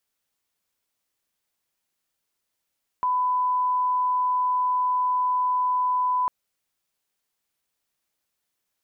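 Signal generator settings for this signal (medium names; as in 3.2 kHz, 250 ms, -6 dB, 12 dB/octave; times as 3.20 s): line-up tone -20 dBFS 3.25 s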